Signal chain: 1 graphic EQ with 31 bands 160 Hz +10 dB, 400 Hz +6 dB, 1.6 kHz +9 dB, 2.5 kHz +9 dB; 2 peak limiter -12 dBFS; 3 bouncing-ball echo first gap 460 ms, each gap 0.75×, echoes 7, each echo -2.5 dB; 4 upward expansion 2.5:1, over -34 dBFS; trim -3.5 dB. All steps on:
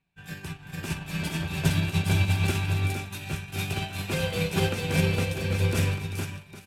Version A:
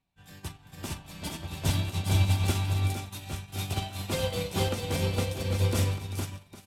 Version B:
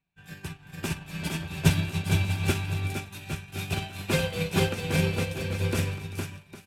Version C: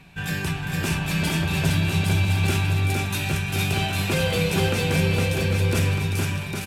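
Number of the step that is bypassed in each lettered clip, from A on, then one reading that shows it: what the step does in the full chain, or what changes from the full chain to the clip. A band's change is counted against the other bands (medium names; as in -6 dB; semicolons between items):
1, loudness change -2.5 LU; 2, crest factor change +4.5 dB; 4, crest factor change -4.5 dB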